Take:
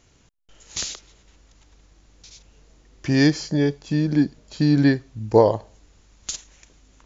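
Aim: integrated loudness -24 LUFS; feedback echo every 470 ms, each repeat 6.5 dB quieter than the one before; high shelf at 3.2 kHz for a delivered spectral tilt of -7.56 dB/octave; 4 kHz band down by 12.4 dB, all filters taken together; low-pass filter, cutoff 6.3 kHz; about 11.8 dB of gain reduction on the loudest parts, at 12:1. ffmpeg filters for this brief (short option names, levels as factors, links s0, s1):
-af "lowpass=6300,highshelf=f=3200:g=-7.5,equalizer=f=4000:t=o:g=-8.5,acompressor=threshold=0.0891:ratio=12,aecho=1:1:470|940|1410|1880|2350|2820:0.473|0.222|0.105|0.0491|0.0231|0.0109,volume=1.58"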